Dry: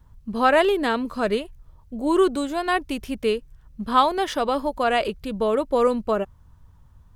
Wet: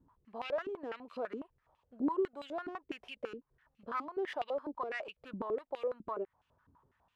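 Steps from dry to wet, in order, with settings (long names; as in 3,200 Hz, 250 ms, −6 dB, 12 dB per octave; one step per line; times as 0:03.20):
stylus tracing distortion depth 0.16 ms
downward compressor 12 to 1, threshold −31 dBFS, peak gain reduction 20 dB
band-pass on a step sequencer 12 Hz 290–2,700 Hz
level +4.5 dB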